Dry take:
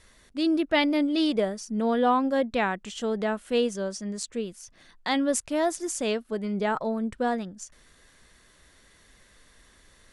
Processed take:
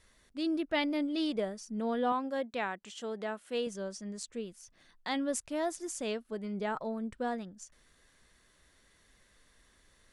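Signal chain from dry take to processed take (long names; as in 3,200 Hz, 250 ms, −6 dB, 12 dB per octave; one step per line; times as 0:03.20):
0:02.12–0:03.67: high-pass filter 310 Hz 6 dB per octave
level −8 dB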